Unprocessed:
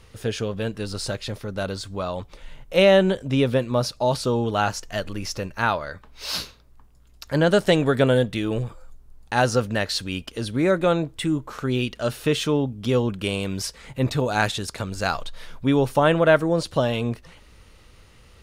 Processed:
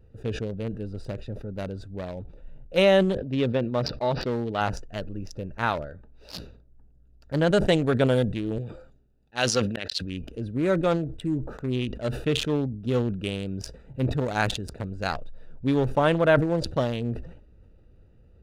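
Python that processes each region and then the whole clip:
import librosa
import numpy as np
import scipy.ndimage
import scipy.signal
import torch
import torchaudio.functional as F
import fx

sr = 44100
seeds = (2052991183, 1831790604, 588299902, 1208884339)

y = fx.chain(x, sr, fx.low_shelf(hz=100.0, db=-9.0),
    fx.resample_bad(factor=4, down='none', up='filtered'), at=(3.17, 4.61))
y = fx.chain(y, sr, fx.weighting(curve='D'),
    fx.auto_swell(attack_ms=156.0), at=(8.58, 10.02))
y = fx.wiener(y, sr, points=41)
y = fx.sustainer(y, sr, db_per_s=77.0)
y = F.gain(torch.from_numpy(y), -3.0).numpy()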